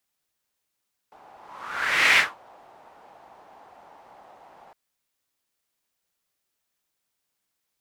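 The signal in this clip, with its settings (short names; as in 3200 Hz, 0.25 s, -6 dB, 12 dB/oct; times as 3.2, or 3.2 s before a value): whoosh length 3.61 s, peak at 1.05, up 0.90 s, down 0.21 s, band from 800 Hz, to 2200 Hz, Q 3.4, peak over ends 33.5 dB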